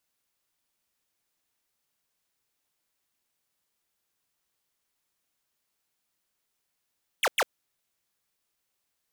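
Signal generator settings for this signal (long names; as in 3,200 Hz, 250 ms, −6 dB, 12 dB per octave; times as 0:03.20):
repeated falling chirps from 3,600 Hz, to 410 Hz, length 0.05 s square, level −23 dB, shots 2, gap 0.10 s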